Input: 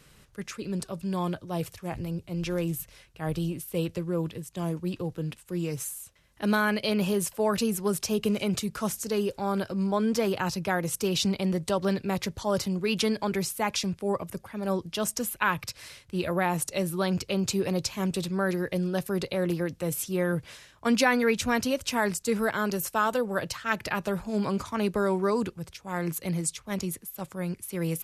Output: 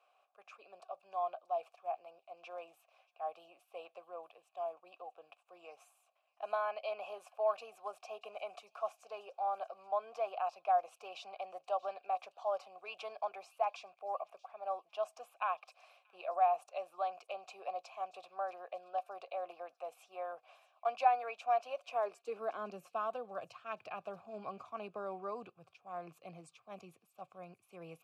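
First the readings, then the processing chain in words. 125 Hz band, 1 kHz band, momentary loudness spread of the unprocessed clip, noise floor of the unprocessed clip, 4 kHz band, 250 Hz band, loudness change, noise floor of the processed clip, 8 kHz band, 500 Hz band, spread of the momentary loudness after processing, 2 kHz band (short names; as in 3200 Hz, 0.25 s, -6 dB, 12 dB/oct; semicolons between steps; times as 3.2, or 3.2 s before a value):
under -30 dB, -3.0 dB, 8 LU, -58 dBFS, -21.5 dB, under -30 dB, -11.0 dB, -77 dBFS, under -30 dB, -10.5 dB, 18 LU, -18.5 dB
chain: vowel filter a; high-pass sweep 700 Hz -> 110 Hz, 21.73–23.27; thin delay 0.632 s, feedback 47%, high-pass 4000 Hz, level -17 dB; gain -2.5 dB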